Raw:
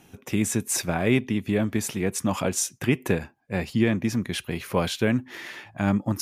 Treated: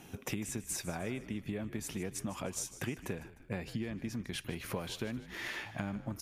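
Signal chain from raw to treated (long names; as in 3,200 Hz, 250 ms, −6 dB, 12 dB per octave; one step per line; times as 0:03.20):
downward compressor 10 to 1, threshold −36 dBFS, peak gain reduction 20.5 dB
echo with shifted repeats 152 ms, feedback 46%, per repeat −64 Hz, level −14.5 dB
level +1 dB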